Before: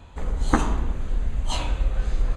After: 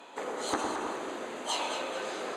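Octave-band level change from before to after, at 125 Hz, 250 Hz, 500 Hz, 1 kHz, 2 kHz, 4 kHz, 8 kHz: −29.5, −9.0, +1.5, −2.0, −1.5, 0.0, 0.0 decibels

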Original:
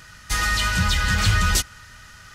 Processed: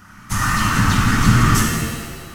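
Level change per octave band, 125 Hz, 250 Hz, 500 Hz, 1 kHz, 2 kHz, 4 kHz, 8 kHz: +7.0, +13.5, +7.0, +7.0, +1.5, −1.5, +2.5 decibels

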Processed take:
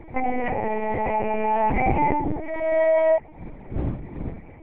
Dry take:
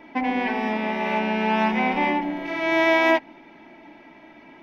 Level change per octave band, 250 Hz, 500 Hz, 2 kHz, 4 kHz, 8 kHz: −4.5 dB, +3.5 dB, −8.5 dB, below −15 dB, can't be measured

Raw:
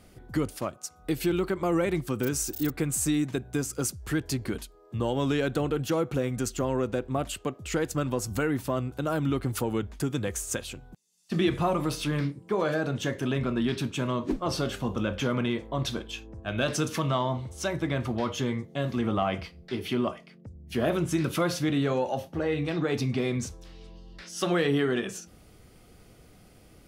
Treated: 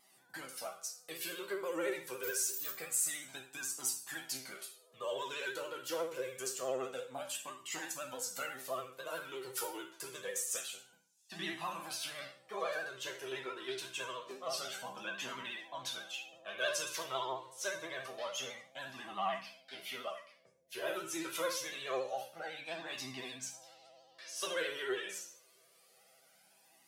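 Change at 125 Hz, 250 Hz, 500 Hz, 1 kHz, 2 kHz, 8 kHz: −30.0, −22.5, −11.5, −8.5, −5.5, −3.0 decibels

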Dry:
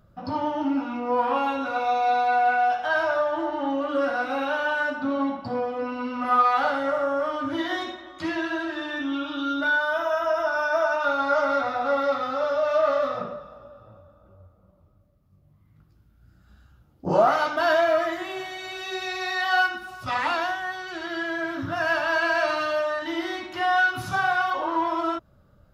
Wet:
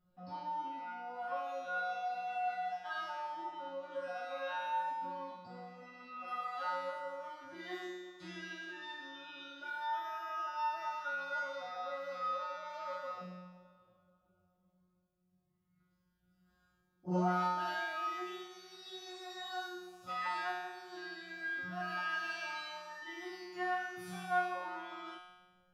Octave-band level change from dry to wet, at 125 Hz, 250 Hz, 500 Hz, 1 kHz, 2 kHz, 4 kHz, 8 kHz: −6.5 dB, −17.5 dB, −19.5 dB, −13.5 dB, −15.5 dB, −14.0 dB, can't be measured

